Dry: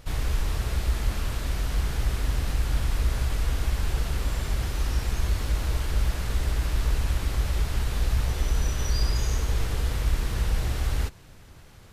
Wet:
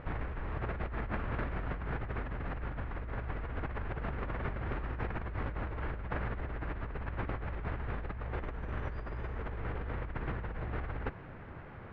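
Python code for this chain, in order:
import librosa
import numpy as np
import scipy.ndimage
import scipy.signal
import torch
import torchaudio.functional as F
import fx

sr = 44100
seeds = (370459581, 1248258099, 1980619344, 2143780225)

y = scipy.signal.sosfilt(scipy.signal.butter(4, 2000.0, 'lowpass', fs=sr, output='sos'), x)
y = fx.low_shelf(y, sr, hz=79.0, db=-12.0)
y = fx.over_compress(y, sr, threshold_db=-38.0, ratio=-1.0)
y = y * 10.0 ** (1.0 / 20.0)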